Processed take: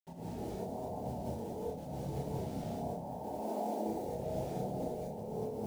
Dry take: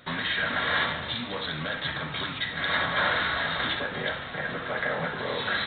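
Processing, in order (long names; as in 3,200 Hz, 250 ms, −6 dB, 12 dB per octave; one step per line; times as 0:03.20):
Butterworth low-pass 880 Hz 96 dB per octave
brickwall limiter −31.5 dBFS, peak gain reduction 10 dB
downward expander −29 dBFS
bit-depth reduction 12 bits, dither none
0:03.17–0:03.86: Chebyshev high-pass filter 210 Hz, order 5
compressor whose output falls as the input rises −56 dBFS, ratio −0.5
multi-voice chorus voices 2, 0.57 Hz, delay 29 ms, depth 1.4 ms
reverb whose tail is shaped and stops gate 260 ms rising, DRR −5.5 dB
level +13.5 dB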